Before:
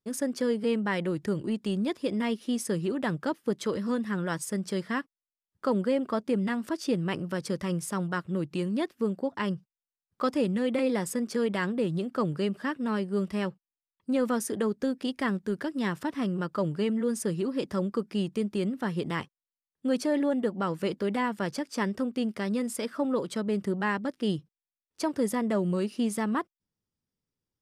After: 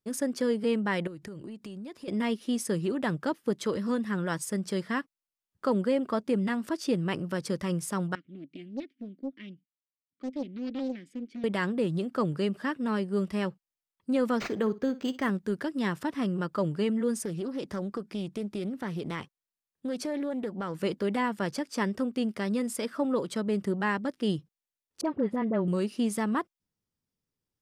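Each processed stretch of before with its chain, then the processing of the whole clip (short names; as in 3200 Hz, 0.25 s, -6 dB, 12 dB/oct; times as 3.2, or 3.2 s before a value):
1.07–2.08 notch 3400 Hz, Q 19 + compressor 8:1, threshold -38 dBFS
8.15–11.44 vowel filter i + Doppler distortion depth 0.65 ms
14.38–15.3 flutter echo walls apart 10.1 m, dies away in 0.21 s + decimation joined by straight lines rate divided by 4×
17.17–20.75 compressor 2.5:1, threshold -31 dBFS + Doppler distortion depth 0.14 ms
25.01–25.68 air absorption 470 m + dispersion highs, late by 41 ms, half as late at 1200 Hz
whole clip: dry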